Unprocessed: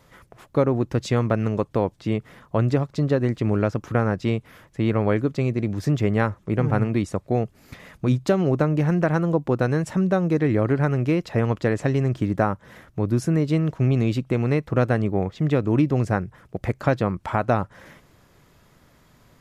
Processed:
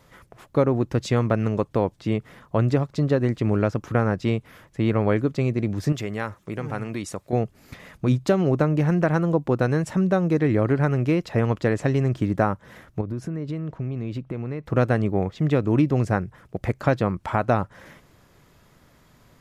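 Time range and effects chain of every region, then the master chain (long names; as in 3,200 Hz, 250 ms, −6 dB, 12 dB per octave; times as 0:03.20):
0:05.92–0:07.33: downward compressor 2 to 1, threshold −24 dBFS + spectral tilt +2 dB per octave
0:13.01–0:14.66: high-shelf EQ 4,100 Hz −11.5 dB + downward compressor 5 to 1, threshold −26 dBFS + one half of a high-frequency compander decoder only
whole clip: no processing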